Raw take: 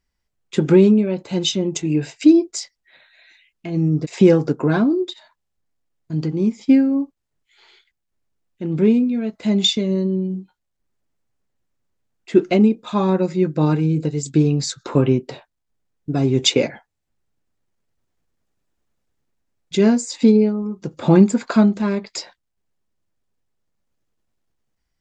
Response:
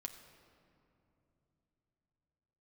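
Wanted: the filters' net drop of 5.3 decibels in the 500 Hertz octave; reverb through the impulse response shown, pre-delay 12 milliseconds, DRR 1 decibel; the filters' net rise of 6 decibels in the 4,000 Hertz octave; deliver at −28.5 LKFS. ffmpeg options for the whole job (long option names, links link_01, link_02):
-filter_complex "[0:a]equalizer=frequency=500:width_type=o:gain=-8,equalizer=frequency=4000:width_type=o:gain=7,asplit=2[link_01][link_02];[1:a]atrim=start_sample=2205,adelay=12[link_03];[link_02][link_03]afir=irnorm=-1:irlink=0,volume=2.5dB[link_04];[link_01][link_04]amix=inputs=2:normalize=0,volume=-11dB"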